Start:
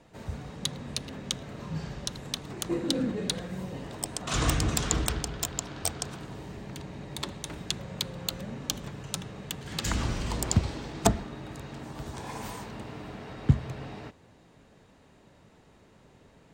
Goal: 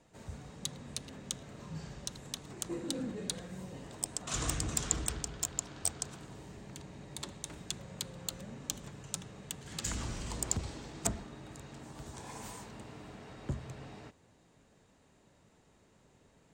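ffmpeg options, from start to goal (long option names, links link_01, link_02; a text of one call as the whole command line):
ffmpeg -i in.wav -filter_complex "[0:a]equalizer=frequency=7600:width_type=o:width=0.83:gain=8,acrossover=split=6000[link_01][link_02];[link_01]asoftclip=type=tanh:threshold=-21dB[link_03];[link_03][link_02]amix=inputs=2:normalize=0,volume=-8dB" out.wav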